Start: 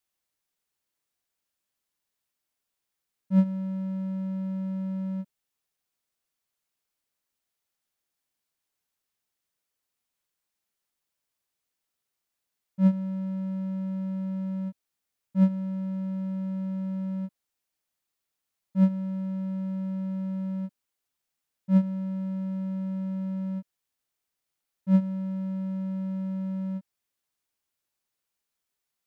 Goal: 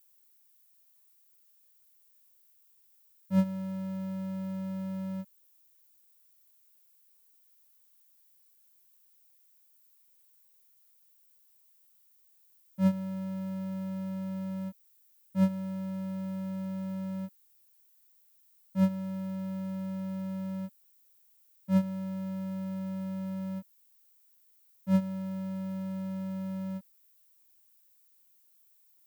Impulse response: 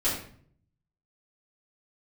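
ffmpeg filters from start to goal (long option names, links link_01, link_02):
-filter_complex "[0:a]asplit=2[link_01][link_02];[link_02]asetrate=22050,aresample=44100,atempo=2,volume=-17dB[link_03];[link_01][link_03]amix=inputs=2:normalize=0,aemphasis=mode=production:type=bsi,volume=1.5dB"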